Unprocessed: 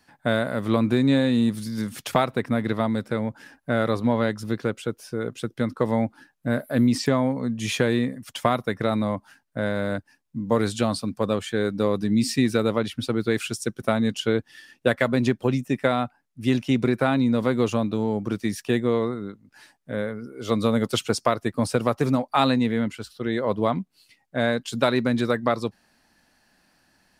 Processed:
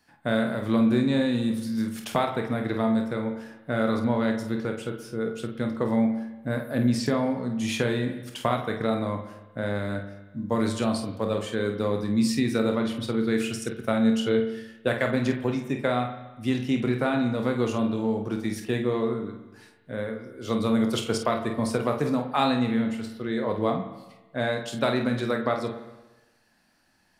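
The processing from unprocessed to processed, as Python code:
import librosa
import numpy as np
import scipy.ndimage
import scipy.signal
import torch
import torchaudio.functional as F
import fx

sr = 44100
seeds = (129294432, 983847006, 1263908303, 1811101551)

p1 = x + fx.room_early_taps(x, sr, ms=(27, 49), db=(-9.5, -8.5), dry=0)
p2 = fx.rev_spring(p1, sr, rt60_s=1.1, pass_ms=(40, 58), chirp_ms=35, drr_db=8.0)
y = p2 * 10.0 ** (-4.5 / 20.0)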